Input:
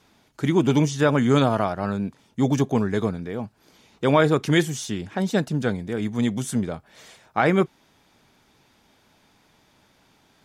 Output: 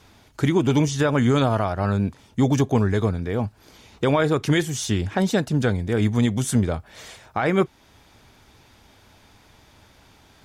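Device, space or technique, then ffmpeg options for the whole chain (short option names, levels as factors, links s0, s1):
car stereo with a boomy subwoofer: -af "lowshelf=f=120:t=q:w=1.5:g=7,alimiter=limit=0.158:level=0:latency=1:release=348,volume=2"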